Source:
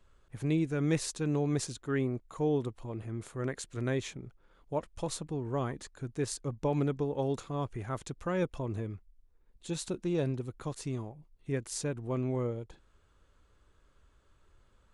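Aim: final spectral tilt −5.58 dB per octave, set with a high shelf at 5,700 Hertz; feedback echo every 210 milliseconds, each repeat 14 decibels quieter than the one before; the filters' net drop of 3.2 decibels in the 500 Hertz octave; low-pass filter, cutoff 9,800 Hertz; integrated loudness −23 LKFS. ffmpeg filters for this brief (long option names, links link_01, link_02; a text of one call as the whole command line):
ffmpeg -i in.wav -af "lowpass=9800,equalizer=frequency=500:width_type=o:gain=-4,highshelf=frequency=5700:gain=3.5,aecho=1:1:210|420:0.2|0.0399,volume=12.5dB" out.wav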